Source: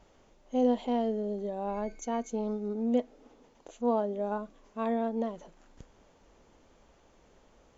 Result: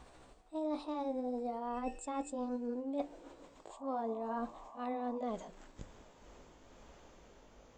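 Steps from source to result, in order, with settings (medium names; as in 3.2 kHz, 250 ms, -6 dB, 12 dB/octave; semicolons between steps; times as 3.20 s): pitch bend over the whole clip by +4 st ending unshifted; reverse; compression 8:1, threshold -39 dBFS, peak gain reduction 17 dB; reverse; painted sound noise, 3.70–5.18 s, 570–1200 Hz -58 dBFS; de-hum 97.38 Hz, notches 9; trim +4.5 dB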